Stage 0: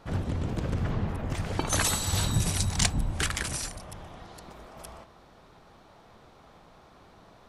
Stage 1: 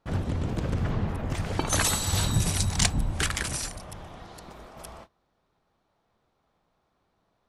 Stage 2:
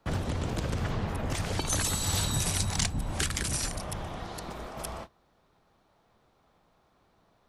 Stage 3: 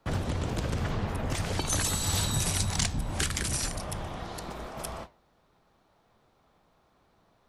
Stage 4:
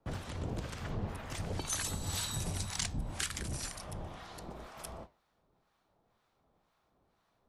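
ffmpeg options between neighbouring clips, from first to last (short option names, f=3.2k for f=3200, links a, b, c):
-af "agate=range=-20dB:threshold=-48dB:ratio=16:detection=peak,volume=1.5dB"
-filter_complex "[0:a]acrossover=split=130|420|3400[a][b][c][d];[a]acompressor=threshold=-39dB:ratio=4[e];[b]acompressor=threshold=-44dB:ratio=4[f];[c]acompressor=threshold=-43dB:ratio=4[g];[d]acompressor=threshold=-37dB:ratio=4[h];[e][f][g][h]amix=inputs=4:normalize=0,volume=6dB"
-af "flanger=delay=7.5:depth=9.8:regen=-85:speed=0.81:shape=sinusoidal,volume=5dB"
-filter_complex "[0:a]acrossover=split=890[a][b];[a]aeval=exprs='val(0)*(1-0.7/2+0.7/2*cos(2*PI*2*n/s))':c=same[c];[b]aeval=exprs='val(0)*(1-0.7/2-0.7/2*cos(2*PI*2*n/s))':c=same[d];[c][d]amix=inputs=2:normalize=0,volume=-5dB"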